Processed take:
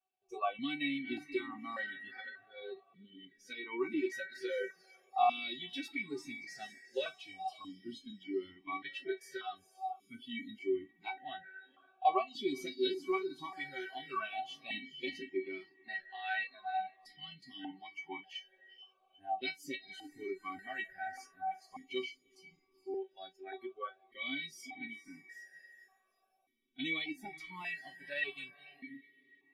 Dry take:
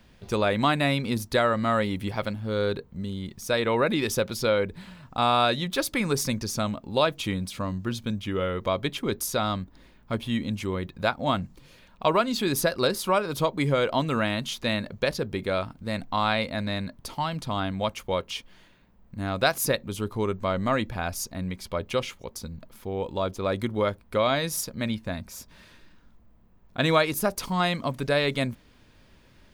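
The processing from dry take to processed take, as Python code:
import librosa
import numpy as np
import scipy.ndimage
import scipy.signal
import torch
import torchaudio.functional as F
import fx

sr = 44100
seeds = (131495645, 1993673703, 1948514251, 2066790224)

y = fx.comb_fb(x, sr, f0_hz=380.0, decay_s=0.17, harmonics='all', damping=0.0, mix_pct=100)
y = fx.echo_diffused(y, sr, ms=459, feedback_pct=58, wet_db=-9.0)
y = fx.filter_lfo_notch(y, sr, shape='sine', hz=0.42, low_hz=470.0, high_hz=1700.0, q=2.4)
y = fx.noise_reduce_blind(y, sr, reduce_db=22)
y = fx.vowel_held(y, sr, hz=1.7)
y = y * librosa.db_to_amplitude(16.5)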